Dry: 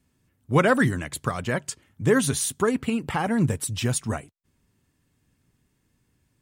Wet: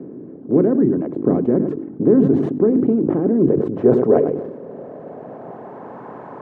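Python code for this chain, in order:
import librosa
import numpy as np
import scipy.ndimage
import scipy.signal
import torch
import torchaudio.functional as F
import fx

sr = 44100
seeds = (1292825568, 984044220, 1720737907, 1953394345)

p1 = fx.bin_compress(x, sr, power=0.4)
p2 = scipy.signal.sosfilt(scipy.signal.butter(2, 8800.0, 'lowpass', fs=sr, output='sos'), p1)
p3 = fx.dereverb_blind(p2, sr, rt60_s=1.0)
p4 = scipy.signal.sosfilt(scipy.signal.butter(2, 220.0, 'highpass', fs=sr, output='sos'), p3)
p5 = fx.hum_notches(p4, sr, base_hz=50, count=7)
p6 = fx.rider(p5, sr, range_db=10, speed_s=0.5)
p7 = p5 + (p6 * librosa.db_to_amplitude(-2.0))
p8 = fx.filter_sweep_lowpass(p7, sr, from_hz=320.0, to_hz=910.0, start_s=3.25, end_s=6.01, q=2.9)
p9 = p8 + fx.echo_single(p8, sr, ms=102, db=-15.0, dry=0)
p10 = fx.sustainer(p9, sr, db_per_s=54.0)
y = p10 * librosa.db_to_amplitude(-2.5)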